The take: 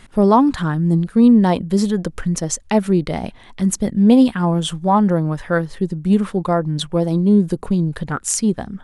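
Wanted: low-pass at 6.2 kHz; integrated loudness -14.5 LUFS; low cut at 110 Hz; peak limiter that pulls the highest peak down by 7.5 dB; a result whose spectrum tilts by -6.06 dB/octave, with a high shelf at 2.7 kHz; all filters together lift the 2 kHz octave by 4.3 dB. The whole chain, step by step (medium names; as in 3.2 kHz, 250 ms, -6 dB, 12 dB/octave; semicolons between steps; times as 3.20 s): high-pass 110 Hz; low-pass 6.2 kHz; peaking EQ 2 kHz +8 dB; treble shelf 2.7 kHz -5.5 dB; trim +4.5 dB; peak limiter -4 dBFS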